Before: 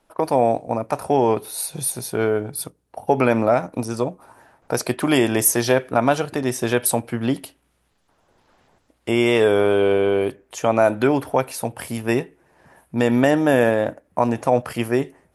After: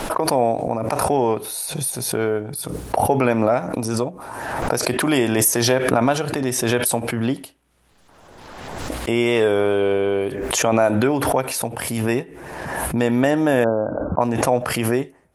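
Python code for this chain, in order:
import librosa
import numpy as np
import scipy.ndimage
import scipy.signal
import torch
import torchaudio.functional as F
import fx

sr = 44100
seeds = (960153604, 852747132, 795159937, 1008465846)

y = fx.brickwall_lowpass(x, sr, high_hz=1600.0, at=(13.64, 14.21))
y = fx.pre_swell(y, sr, db_per_s=32.0)
y = y * librosa.db_to_amplitude(-1.5)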